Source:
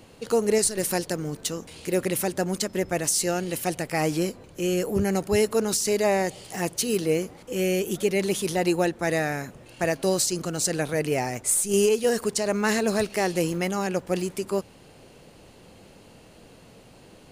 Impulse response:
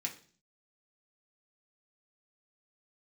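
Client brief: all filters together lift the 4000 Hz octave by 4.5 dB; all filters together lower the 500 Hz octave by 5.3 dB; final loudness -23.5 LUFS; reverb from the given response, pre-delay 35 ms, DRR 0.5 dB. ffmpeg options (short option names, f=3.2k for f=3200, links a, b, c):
-filter_complex "[0:a]equalizer=f=500:t=o:g=-7,equalizer=f=4k:t=o:g=6,asplit=2[a][b];[1:a]atrim=start_sample=2205,adelay=35[c];[b][c]afir=irnorm=-1:irlink=0,volume=-1dB[d];[a][d]amix=inputs=2:normalize=0"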